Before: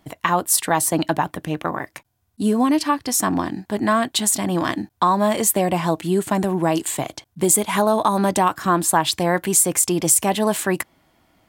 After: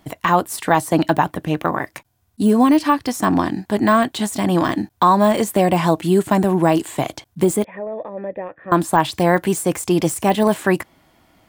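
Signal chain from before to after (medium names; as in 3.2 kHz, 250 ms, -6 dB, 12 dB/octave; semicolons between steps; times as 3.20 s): de-esser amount 70%; 7.64–8.72 s: cascade formant filter e; trim +4.5 dB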